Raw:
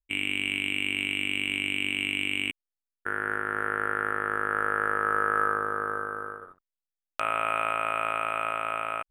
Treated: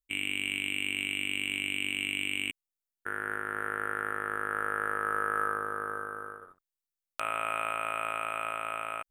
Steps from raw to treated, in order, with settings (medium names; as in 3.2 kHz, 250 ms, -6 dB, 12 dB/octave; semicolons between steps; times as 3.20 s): treble shelf 4.9 kHz +9.5 dB; trim -5.5 dB